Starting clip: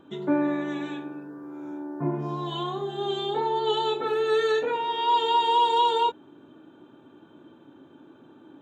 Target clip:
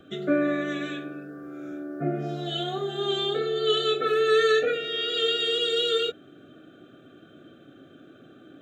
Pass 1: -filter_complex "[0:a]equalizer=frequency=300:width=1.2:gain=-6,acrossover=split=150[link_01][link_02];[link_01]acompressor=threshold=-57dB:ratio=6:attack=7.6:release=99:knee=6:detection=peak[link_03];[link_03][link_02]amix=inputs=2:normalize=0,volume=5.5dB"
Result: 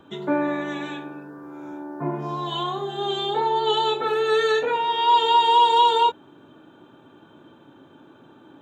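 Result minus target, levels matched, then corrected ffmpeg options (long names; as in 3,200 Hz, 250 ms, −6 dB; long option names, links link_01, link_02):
1,000 Hz band +11.5 dB
-filter_complex "[0:a]asuperstop=centerf=950:order=12:qfactor=2.4,equalizer=frequency=300:width=1.2:gain=-6,acrossover=split=150[link_01][link_02];[link_01]acompressor=threshold=-57dB:ratio=6:attack=7.6:release=99:knee=6:detection=peak[link_03];[link_03][link_02]amix=inputs=2:normalize=0,volume=5.5dB"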